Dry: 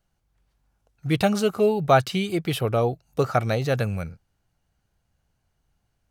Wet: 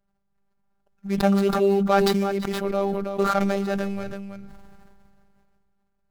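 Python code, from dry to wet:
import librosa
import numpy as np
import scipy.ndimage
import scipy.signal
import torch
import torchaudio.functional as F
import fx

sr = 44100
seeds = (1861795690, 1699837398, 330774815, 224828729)

p1 = scipy.signal.medfilt(x, 15)
p2 = fx.robotise(p1, sr, hz=198.0)
p3 = p2 + fx.echo_single(p2, sr, ms=326, db=-14.0, dry=0)
y = fx.sustainer(p3, sr, db_per_s=22.0)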